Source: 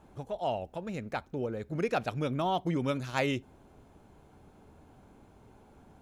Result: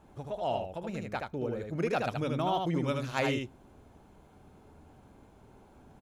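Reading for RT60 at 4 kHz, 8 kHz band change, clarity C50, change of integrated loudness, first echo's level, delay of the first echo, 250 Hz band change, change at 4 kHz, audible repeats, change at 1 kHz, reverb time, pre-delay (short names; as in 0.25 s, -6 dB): none, +0.5 dB, none, 0.0 dB, -4.0 dB, 77 ms, 0.0 dB, +0.5 dB, 1, +0.5 dB, none, none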